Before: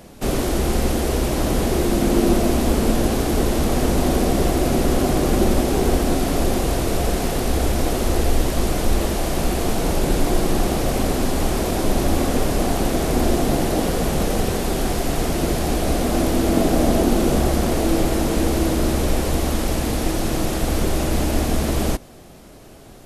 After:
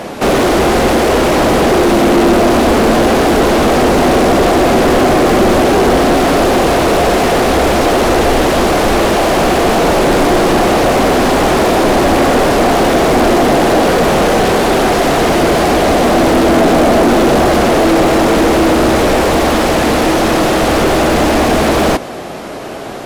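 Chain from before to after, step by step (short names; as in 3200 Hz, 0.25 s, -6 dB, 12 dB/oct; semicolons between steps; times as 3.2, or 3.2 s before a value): overdrive pedal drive 30 dB, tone 1500 Hz, clips at -4 dBFS; gain +3 dB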